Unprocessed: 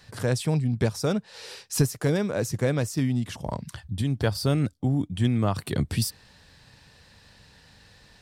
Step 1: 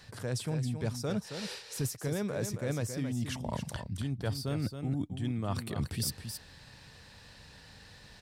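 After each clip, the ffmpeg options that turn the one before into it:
-af "areverse,acompressor=threshold=0.0282:ratio=6,areverse,aecho=1:1:271:0.398"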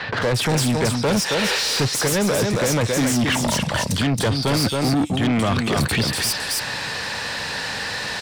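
-filter_complex "[0:a]acrossover=split=3600[s0][s1];[s1]adelay=220[s2];[s0][s2]amix=inputs=2:normalize=0,acrossover=split=350|3000[s3][s4][s5];[s4]acompressor=threshold=0.00631:ratio=3[s6];[s3][s6][s5]amix=inputs=3:normalize=0,asplit=2[s7][s8];[s8]highpass=f=720:p=1,volume=31.6,asoftclip=type=tanh:threshold=0.106[s9];[s7][s9]amix=inputs=2:normalize=0,lowpass=f=4800:p=1,volume=0.501,volume=2.66"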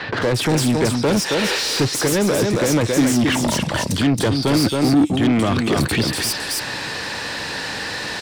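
-af "equalizer=f=320:w=2.2:g=8"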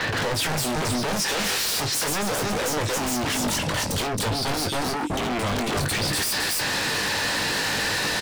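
-filter_complex "[0:a]alimiter=limit=0.141:level=0:latency=1:release=201,aeval=exprs='0.0596*(abs(mod(val(0)/0.0596+3,4)-2)-1)':c=same,asplit=2[s0][s1];[s1]adelay=20,volume=0.398[s2];[s0][s2]amix=inputs=2:normalize=0,volume=1.5"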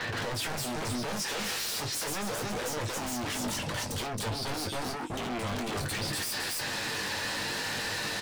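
-af "flanger=delay=8.2:depth=1.3:regen=-44:speed=0.77:shape=triangular,volume=0.596"

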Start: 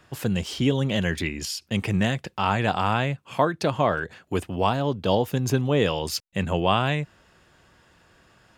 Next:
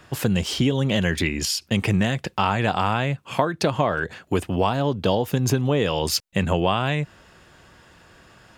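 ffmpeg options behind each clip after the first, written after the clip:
-af "acompressor=threshold=0.0708:ratio=6,volume=2.11"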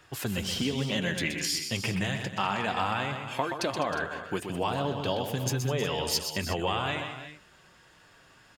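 -af "tiltshelf=f=880:g=-3,flanger=delay=2.2:depth=5.5:regen=-44:speed=0.3:shape=triangular,aecho=1:1:125|203|314|360:0.447|0.188|0.224|0.188,volume=0.631"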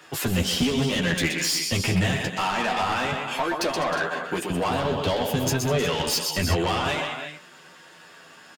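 -filter_complex "[0:a]acrossover=split=150[s0][s1];[s0]acrusher=bits=5:mix=0:aa=0.5[s2];[s1]asoftclip=type=tanh:threshold=0.0335[s3];[s2][s3]amix=inputs=2:normalize=0,asplit=2[s4][s5];[s5]adelay=12,volume=0.631[s6];[s4][s6]amix=inputs=2:normalize=0,volume=2.51"

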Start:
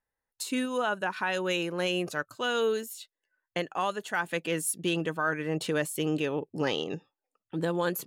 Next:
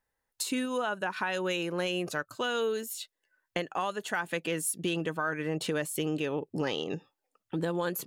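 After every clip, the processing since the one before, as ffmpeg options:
-af "acompressor=threshold=0.0158:ratio=2.5,volume=1.78"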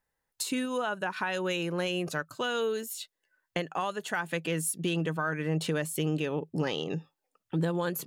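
-af "equalizer=f=160:t=o:w=0.22:g=8"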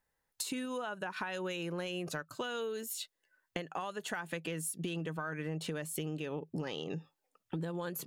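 -af "acompressor=threshold=0.0178:ratio=6"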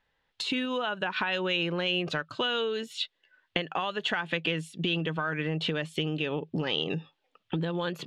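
-af "lowpass=f=3300:t=q:w=2.7,volume=2.24"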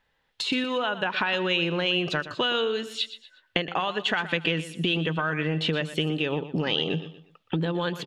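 -af "aecho=1:1:120|240|360:0.211|0.0719|0.0244,volume=1.5"

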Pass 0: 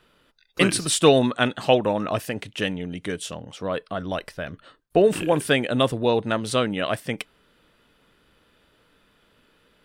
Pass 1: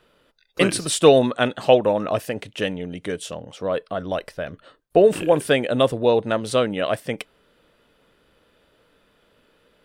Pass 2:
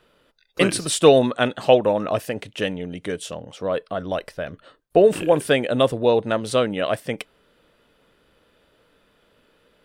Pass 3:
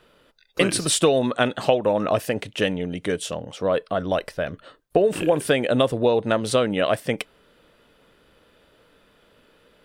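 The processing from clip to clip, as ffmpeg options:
-af "equalizer=f=540:t=o:w=0.96:g=6,volume=0.891"
-af anull
-af "acompressor=threshold=0.126:ratio=6,volume=1.41"

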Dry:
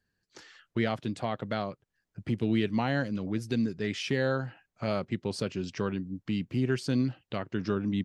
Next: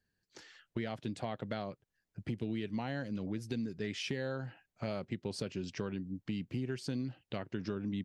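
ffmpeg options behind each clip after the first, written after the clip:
-af "equalizer=f=1200:w=2.8:g=-4,acompressor=threshold=0.0316:ratio=6,volume=0.708"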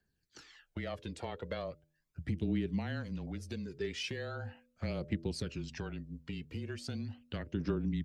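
-af "bandreject=f=88.17:t=h:w=4,bandreject=f=176.34:t=h:w=4,bandreject=f=264.51:t=h:w=4,bandreject=f=352.68:t=h:w=4,bandreject=f=440.85:t=h:w=4,bandreject=f=529.02:t=h:w=4,bandreject=f=617.19:t=h:w=4,aphaser=in_gain=1:out_gain=1:delay=2.3:decay=0.52:speed=0.39:type=triangular,afreqshift=-23,volume=0.841"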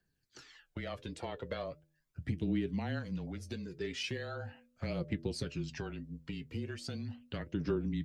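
-af "flanger=delay=5.7:depth=3:regen=55:speed=1.6:shape=triangular,volume=1.68"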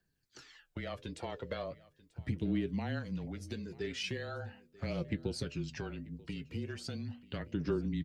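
-af "aecho=1:1:938:0.0841"

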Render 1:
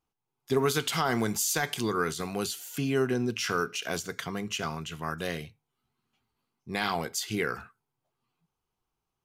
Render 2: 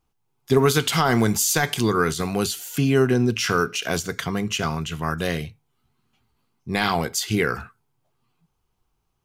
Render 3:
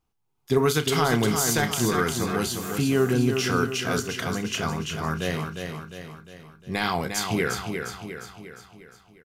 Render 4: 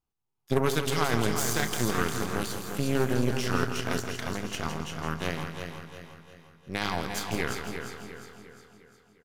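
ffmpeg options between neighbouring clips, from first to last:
-af "lowshelf=f=120:g=9.5,volume=2.24"
-filter_complex "[0:a]asplit=2[s0][s1];[s1]adelay=33,volume=0.224[s2];[s0][s2]amix=inputs=2:normalize=0,asplit=2[s3][s4];[s4]aecho=0:1:354|708|1062|1416|1770|2124:0.501|0.256|0.13|0.0665|0.0339|0.0173[s5];[s3][s5]amix=inputs=2:normalize=0,volume=0.631"
-af "aeval=exprs='0.376*(cos(1*acos(clip(val(0)/0.376,-1,1)))-cos(1*PI/2))+0.0841*(cos(3*acos(clip(val(0)/0.376,-1,1)))-cos(3*PI/2))+0.0266*(cos(6*acos(clip(val(0)/0.376,-1,1)))-cos(6*PI/2))':c=same,aecho=1:1:165|330|495|660|825|990|1155:0.355|0.209|0.124|0.0729|0.043|0.0254|0.015"

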